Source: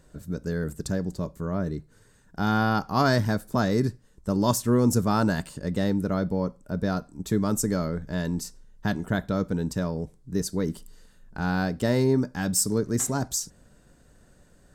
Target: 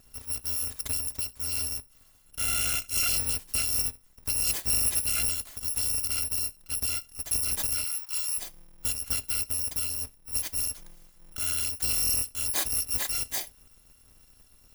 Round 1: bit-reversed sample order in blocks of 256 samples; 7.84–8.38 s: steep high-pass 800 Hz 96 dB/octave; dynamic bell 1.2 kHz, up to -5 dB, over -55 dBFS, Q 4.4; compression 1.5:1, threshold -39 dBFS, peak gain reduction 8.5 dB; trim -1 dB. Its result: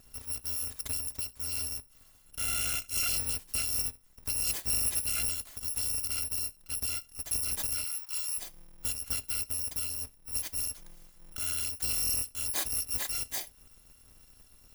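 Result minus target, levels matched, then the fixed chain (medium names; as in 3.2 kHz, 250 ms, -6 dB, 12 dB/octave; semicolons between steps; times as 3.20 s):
compression: peak gain reduction +4 dB
bit-reversed sample order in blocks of 256 samples; 7.84–8.38 s: steep high-pass 800 Hz 96 dB/octave; dynamic bell 1.2 kHz, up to -5 dB, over -55 dBFS, Q 4.4; compression 1.5:1, threshold -27.5 dBFS, peak gain reduction 4.5 dB; trim -1 dB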